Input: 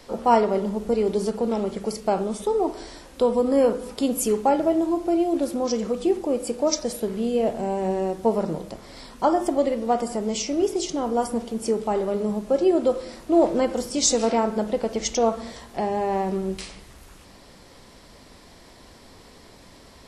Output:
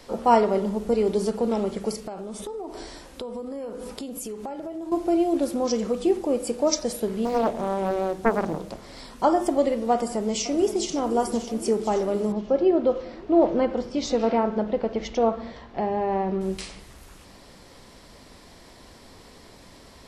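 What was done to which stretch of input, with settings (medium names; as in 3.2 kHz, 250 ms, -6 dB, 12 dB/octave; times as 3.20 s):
1.95–4.92 s: compression 8:1, threshold -31 dBFS
7.25–8.98 s: loudspeaker Doppler distortion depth 0.75 ms
9.93–10.92 s: echo throw 520 ms, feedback 75%, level -13 dB
12.32–16.41 s: distance through air 240 m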